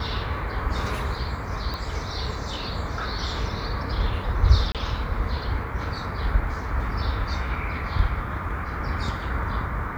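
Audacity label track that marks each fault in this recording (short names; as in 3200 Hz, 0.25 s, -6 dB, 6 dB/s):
1.740000	1.740000	pop -18 dBFS
4.720000	4.750000	gap 27 ms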